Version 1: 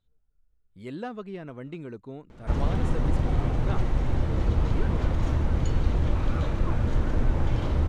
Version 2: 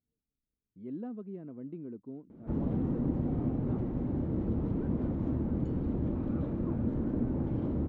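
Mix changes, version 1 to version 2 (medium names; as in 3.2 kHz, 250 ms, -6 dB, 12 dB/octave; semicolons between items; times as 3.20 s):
background +4.0 dB; master: add band-pass filter 250 Hz, Q 1.9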